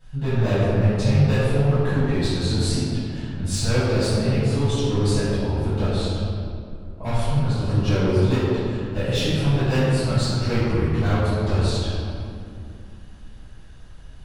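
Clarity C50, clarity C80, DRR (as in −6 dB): −4.0 dB, −2.0 dB, −16.0 dB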